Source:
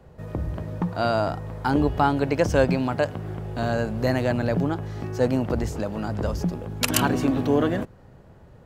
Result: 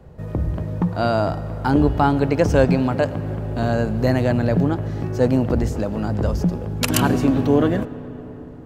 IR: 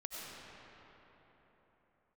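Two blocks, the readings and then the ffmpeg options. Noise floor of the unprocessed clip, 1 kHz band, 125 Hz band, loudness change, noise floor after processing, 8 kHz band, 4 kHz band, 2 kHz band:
-50 dBFS, +2.5 dB, +6.0 dB, +4.5 dB, -36 dBFS, +1.0 dB, +1.0 dB, +1.5 dB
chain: -filter_complex "[0:a]lowshelf=f=480:g=5.5,asplit=2[a][b];[1:a]atrim=start_sample=2205[c];[b][c]afir=irnorm=-1:irlink=0,volume=-13.5dB[d];[a][d]amix=inputs=2:normalize=0"

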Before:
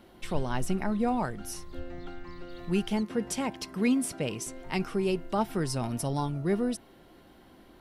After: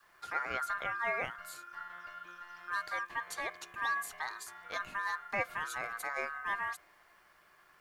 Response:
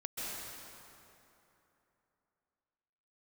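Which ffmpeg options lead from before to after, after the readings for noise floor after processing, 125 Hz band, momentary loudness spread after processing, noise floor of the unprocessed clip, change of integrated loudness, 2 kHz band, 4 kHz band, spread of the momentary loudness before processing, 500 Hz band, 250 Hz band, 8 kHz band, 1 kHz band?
-65 dBFS, -25.0 dB, 12 LU, -56 dBFS, -6.5 dB, +6.5 dB, -7.0 dB, 14 LU, -12.5 dB, -28.0 dB, -9.5 dB, -1.0 dB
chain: -af "adynamicequalizer=threshold=0.00562:dfrequency=760:dqfactor=1.6:tfrequency=760:tqfactor=1.6:attack=5:release=100:ratio=0.375:range=3:mode=boostabove:tftype=bell,aeval=exprs='val(0)*sin(2*PI*1400*n/s)':c=same,acrusher=bits=10:mix=0:aa=0.000001,volume=-6.5dB"

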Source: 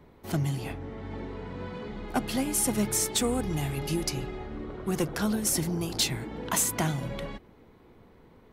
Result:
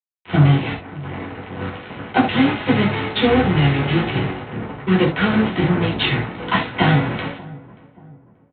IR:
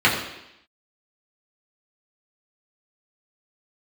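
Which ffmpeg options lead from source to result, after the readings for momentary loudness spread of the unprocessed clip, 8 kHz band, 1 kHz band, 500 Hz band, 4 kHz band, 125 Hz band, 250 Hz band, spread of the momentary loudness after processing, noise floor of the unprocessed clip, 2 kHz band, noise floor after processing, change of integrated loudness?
13 LU, under -40 dB, +13.5 dB, +11.0 dB, +9.0 dB, +14.0 dB, +12.0 dB, 14 LU, -56 dBFS, +16.0 dB, -52 dBFS, +11.0 dB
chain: -filter_complex "[0:a]aresample=8000,acrusher=bits=4:mix=0:aa=0.5,aresample=44100,asplit=2[a][b];[b]adelay=582,lowpass=f=850:p=1,volume=-19dB,asplit=2[c][d];[d]adelay=582,lowpass=f=850:p=1,volume=0.44,asplit=2[e][f];[f]adelay=582,lowpass=f=850:p=1,volume=0.44[g];[a][c][e][g]amix=inputs=4:normalize=0[h];[1:a]atrim=start_sample=2205,atrim=end_sample=3969[i];[h][i]afir=irnorm=-1:irlink=0,volume=-7.5dB"

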